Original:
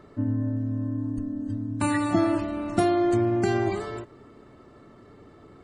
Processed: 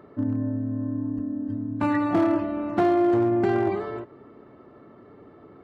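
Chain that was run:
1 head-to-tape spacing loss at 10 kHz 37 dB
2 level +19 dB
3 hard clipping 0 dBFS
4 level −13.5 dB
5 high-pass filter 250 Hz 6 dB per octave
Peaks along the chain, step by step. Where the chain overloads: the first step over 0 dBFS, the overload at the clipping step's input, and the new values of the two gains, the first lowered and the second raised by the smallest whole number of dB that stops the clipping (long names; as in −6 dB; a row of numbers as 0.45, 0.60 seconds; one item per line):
−11.5, +7.5, 0.0, −13.5, −10.5 dBFS
step 2, 7.5 dB
step 2 +11 dB, step 4 −5.5 dB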